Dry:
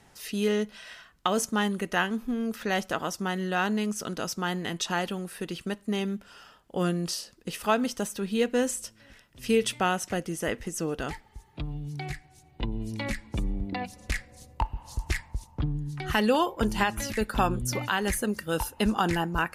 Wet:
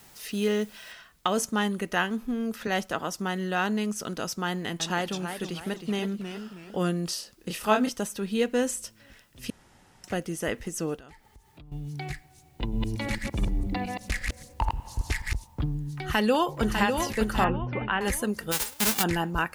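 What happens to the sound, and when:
0.92 s: noise floor step -55 dB -69 dB
2.67–3.16 s: three bands expanded up and down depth 40%
4.48–6.77 s: modulated delay 320 ms, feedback 37%, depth 148 cents, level -8 dB
7.36–7.89 s: doubling 28 ms -3.5 dB
9.50–10.04 s: room tone
10.96–11.72 s: compression 3:1, threshold -51 dBFS
12.62–15.36 s: chunks repeated in reverse 113 ms, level -1.5 dB
15.88–16.91 s: echo throw 600 ms, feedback 40%, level -5.5 dB
17.44–18.01 s: steep low-pass 2.9 kHz
18.51–19.02 s: formants flattened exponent 0.1

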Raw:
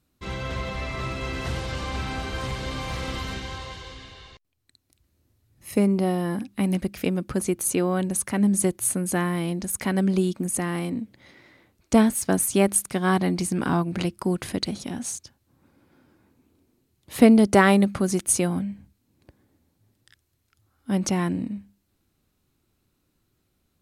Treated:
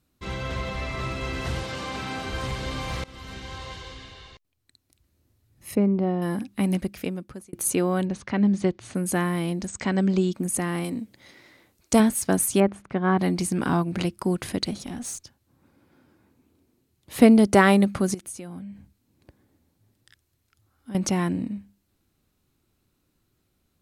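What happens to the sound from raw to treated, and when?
1.63–2.26 s: high-pass 140 Hz
3.04–3.73 s: fade in, from -21 dB
5.75–6.22 s: tape spacing loss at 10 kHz 33 dB
6.73–7.53 s: fade out
8.05–8.95 s: low-pass 4.9 kHz 24 dB/octave
9.67–10.33 s: brick-wall FIR low-pass 8.4 kHz
10.84–12.00 s: tone controls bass -3 dB, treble +7 dB
12.60–13.19 s: low-pass 1.8 kHz
14.73–17.17 s: valve stage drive 27 dB, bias 0.25
18.14–20.95 s: compression 4:1, threshold -37 dBFS

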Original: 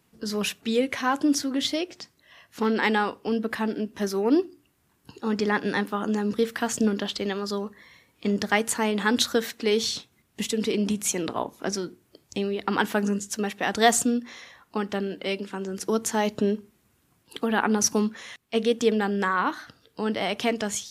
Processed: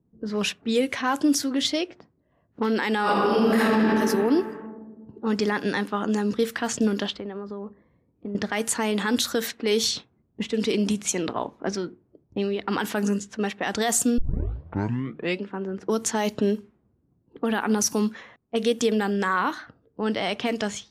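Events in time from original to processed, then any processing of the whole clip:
3.02–3.79 s: reverb throw, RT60 2.2 s, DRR -11.5 dB
7.10–8.35 s: compression 10:1, threshold -30 dBFS
14.18 s: tape start 1.24 s
whole clip: level-controlled noise filter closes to 340 Hz, open at -20.5 dBFS; treble shelf 7.1 kHz +8 dB; peak limiter -14.5 dBFS; trim +1.5 dB

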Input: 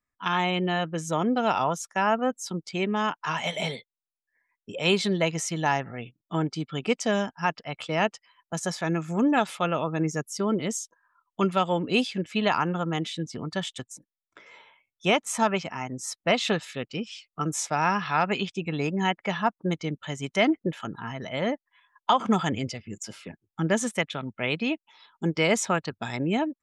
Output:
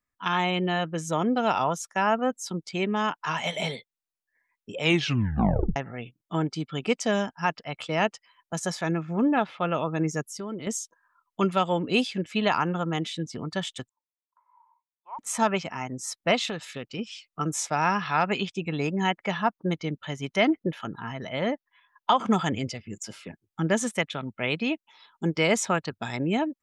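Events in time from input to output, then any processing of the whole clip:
4.81 s: tape stop 0.95 s
8.91–9.71 s: distance through air 280 m
10.27–10.67 s: compression 2:1, threshold -37 dBFS
13.89–15.19 s: Butterworth band-pass 980 Hz, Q 5.8
16.45–16.99 s: compression 3:1, threshold -30 dBFS
19.31–22.16 s: peaking EQ 7.8 kHz -14 dB 0.3 oct

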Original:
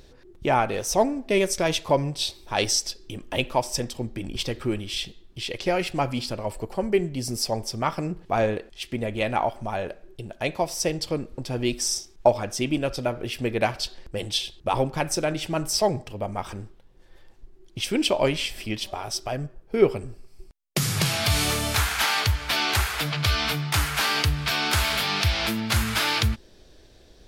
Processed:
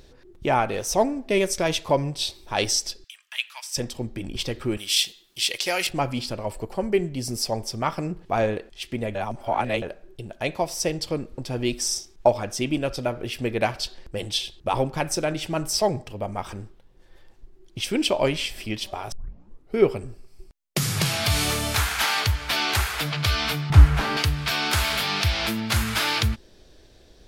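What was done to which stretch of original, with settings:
3.04–3.77 s: high-pass 1.5 kHz 24 dB/octave
4.77–5.87 s: tilt EQ +4.5 dB/octave
9.15–9.82 s: reverse
19.12 s: tape start 0.64 s
23.70–24.17 s: tilt EQ -4 dB/octave

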